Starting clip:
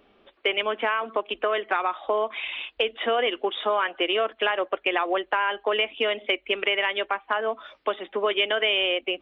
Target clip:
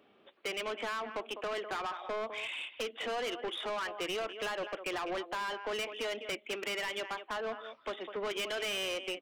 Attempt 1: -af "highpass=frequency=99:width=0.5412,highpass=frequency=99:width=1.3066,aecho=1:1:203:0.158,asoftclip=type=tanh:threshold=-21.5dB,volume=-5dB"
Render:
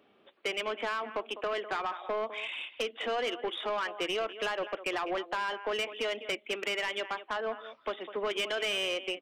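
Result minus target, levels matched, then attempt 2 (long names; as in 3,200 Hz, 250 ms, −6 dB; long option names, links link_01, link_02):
soft clipping: distortion −5 dB
-af "highpass=frequency=99:width=0.5412,highpass=frequency=99:width=1.3066,aecho=1:1:203:0.158,asoftclip=type=tanh:threshold=-27.5dB,volume=-5dB"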